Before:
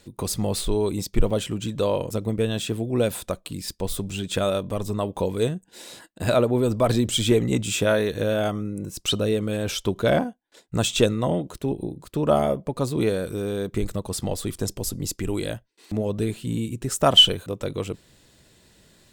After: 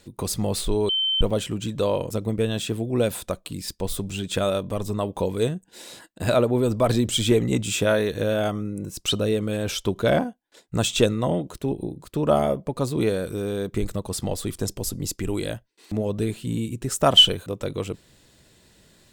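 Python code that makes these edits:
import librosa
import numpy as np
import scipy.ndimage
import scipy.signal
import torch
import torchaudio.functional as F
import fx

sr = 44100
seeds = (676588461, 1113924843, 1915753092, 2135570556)

y = fx.edit(x, sr, fx.bleep(start_s=0.89, length_s=0.32, hz=3090.0, db=-20.0), tone=tone)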